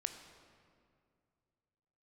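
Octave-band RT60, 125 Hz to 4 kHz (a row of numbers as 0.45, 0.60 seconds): 2.9, 2.6, 2.4, 2.2, 1.8, 1.4 seconds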